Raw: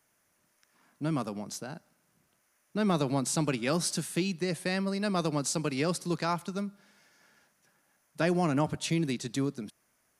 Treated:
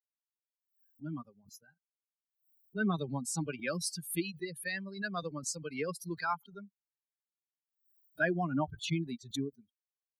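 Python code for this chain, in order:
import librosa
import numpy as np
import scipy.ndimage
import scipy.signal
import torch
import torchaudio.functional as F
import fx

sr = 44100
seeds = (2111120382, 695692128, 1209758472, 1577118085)

y = fx.bin_expand(x, sr, power=3.0)
y = fx.peak_eq(y, sr, hz=1600.0, db=12.0, octaves=0.27)
y = fx.pre_swell(y, sr, db_per_s=130.0)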